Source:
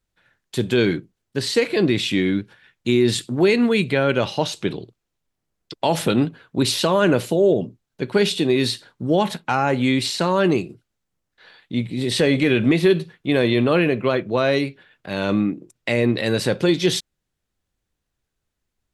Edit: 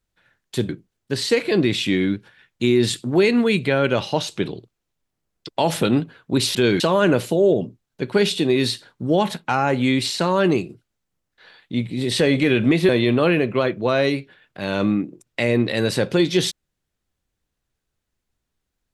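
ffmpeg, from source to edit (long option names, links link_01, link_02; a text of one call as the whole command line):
ffmpeg -i in.wav -filter_complex "[0:a]asplit=5[link_01][link_02][link_03][link_04][link_05];[link_01]atrim=end=0.692[link_06];[link_02]atrim=start=0.938:end=6.802[link_07];[link_03]atrim=start=0.688:end=0.942[link_08];[link_04]atrim=start=6.798:end=12.892[link_09];[link_05]atrim=start=13.378[link_10];[link_06][link_07]acrossfade=duration=0.004:curve1=hsin:curve2=hsin[link_11];[link_11][link_08]acrossfade=duration=0.004:curve1=hsin:curve2=hsin[link_12];[link_12][link_09]acrossfade=duration=0.004:curve1=hsin:curve2=hsin[link_13];[link_13][link_10]acrossfade=duration=0.004:curve1=hsin:curve2=hsin" out.wav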